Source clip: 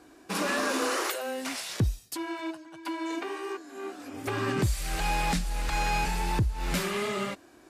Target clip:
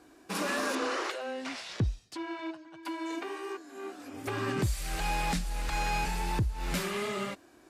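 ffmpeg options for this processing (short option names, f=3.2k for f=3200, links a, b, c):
-filter_complex "[0:a]asettb=1/sr,asplit=3[a][b][c];[a]atrim=end=0.754[d];[b]atrim=start=0.75:end=2.83,asetpts=PTS-STARTPTS,afade=t=in:d=0.004:c=qsin,afade=t=out:st=2.076:d=0.004:c=qsin,lowpass=4.9k[e];[c]atrim=start=2.826[f];[d][e]acrossfade=d=0.004:c1=hsin:c2=qsin[g];[g][f]acrossfade=d=0.004:c1=qsin:c2=hsin,volume=-3dB"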